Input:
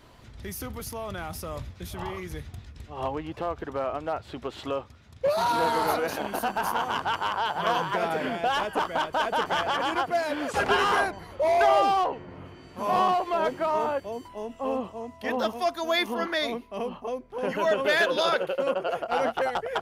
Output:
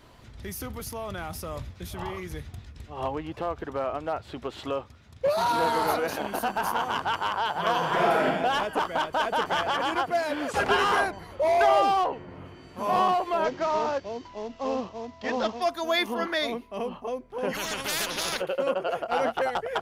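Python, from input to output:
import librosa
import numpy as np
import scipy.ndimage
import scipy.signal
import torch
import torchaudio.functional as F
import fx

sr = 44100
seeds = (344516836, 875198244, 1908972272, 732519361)

y = fx.reverb_throw(x, sr, start_s=7.77, length_s=0.48, rt60_s=1.1, drr_db=-2.5)
y = fx.cvsd(y, sr, bps=32000, at=(13.44, 15.62))
y = fx.spectral_comp(y, sr, ratio=4.0, at=(17.53, 18.4), fade=0.02)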